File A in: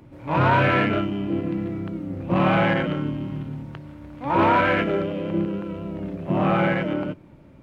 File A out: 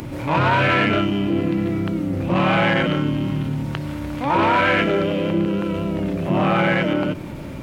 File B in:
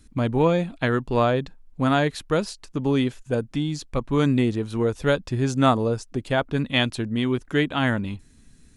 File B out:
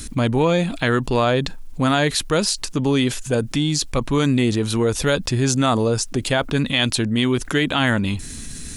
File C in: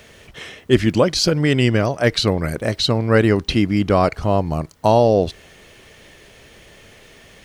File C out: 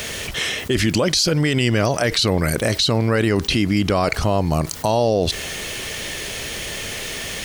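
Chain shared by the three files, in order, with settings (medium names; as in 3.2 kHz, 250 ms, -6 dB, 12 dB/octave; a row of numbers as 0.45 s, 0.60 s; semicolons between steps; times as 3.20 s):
treble shelf 2.8 kHz +10.5 dB; peak limiter -11 dBFS; level flattener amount 50%; normalise loudness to -20 LUFS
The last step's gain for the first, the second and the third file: +1.0 dB, +1.5 dB, +1.0 dB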